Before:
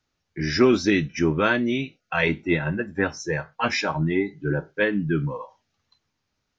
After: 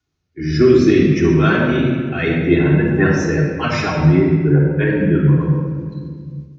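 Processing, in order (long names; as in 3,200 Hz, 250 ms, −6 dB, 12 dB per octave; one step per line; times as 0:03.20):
spectral magnitudes quantised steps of 15 dB
0:04.17–0:04.90: low-pass filter 2,500 Hz 12 dB per octave
rotating-speaker cabinet horn 0.6 Hz, later 8 Hz, at 0:03.24
high-pass filter 46 Hz
low-shelf EQ 230 Hz +6 dB
rectangular room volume 2,700 cubic metres, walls mixed, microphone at 3.3 metres
automatic gain control gain up to 6 dB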